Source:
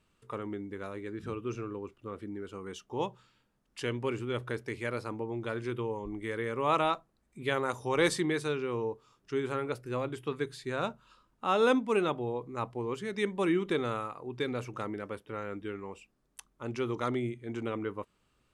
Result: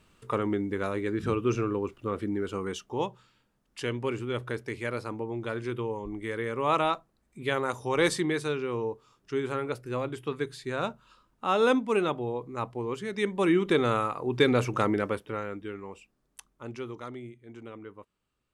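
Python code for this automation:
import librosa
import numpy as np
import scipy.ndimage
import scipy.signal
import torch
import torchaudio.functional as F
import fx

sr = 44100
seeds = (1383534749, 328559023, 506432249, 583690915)

y = fx.gain(x, sr, db=fx.line((2.61, 9.5), (3.06, 2.0), (13.16, 2.0), (14.39, 11.0), (15.01, 11.0), (15.6, 0.5), (16.49, 0.5), (17.11, -9.0)))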